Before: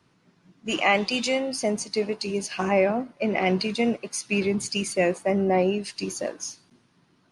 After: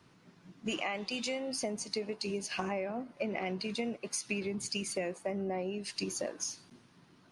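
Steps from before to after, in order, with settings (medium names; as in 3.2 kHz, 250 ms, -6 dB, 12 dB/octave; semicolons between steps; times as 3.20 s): compression 10:1, threshold -34 dBFS, peak gain reduction 18.5 dB; trim +1.5 dB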